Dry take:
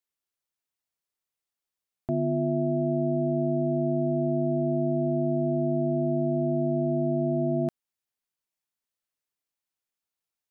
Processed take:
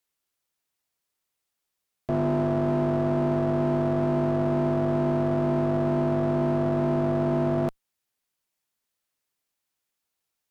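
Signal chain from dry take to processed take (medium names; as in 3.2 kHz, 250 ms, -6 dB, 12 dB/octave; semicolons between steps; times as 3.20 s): in parallel at +1.5 dB: peak limiter -24.5 dBFS, peak gain reduction 7.5 dB; on the sum: one-sided clip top -26 dBFS, bottom -16 dBFS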